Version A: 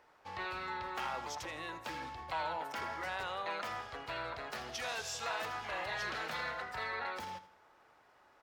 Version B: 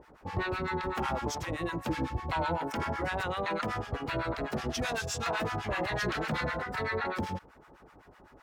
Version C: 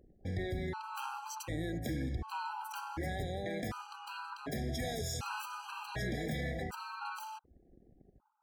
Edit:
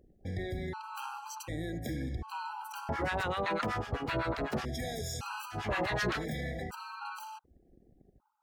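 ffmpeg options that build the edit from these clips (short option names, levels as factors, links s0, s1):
-filter_complex "[1:a]asplit=2[s0][s1];[2:a]asplit=3[s2][s3][s4];[s2]atrim=end=2.892[s5];[s0]atrim=start=2.888:end=4.652[s6];[s3]atrim=start=4.648:end=5.6[s7];[s1]atrim=start=5.5:end=6.25[s8];[s4]atrim=start=6.15[s9];[s5][s6]acrossfade=d=0.004:c1=hsin:c2=hsin[s10];[s10][s7]acrossfade=d=0.004:c1=hsin:c2=hsin[s11];[s11][s8]acrossfade=d=0.1:c1=tri:c2=tri[s12];[s12][s9]acrossfade=d=0.1:c1=tri:c2=tri"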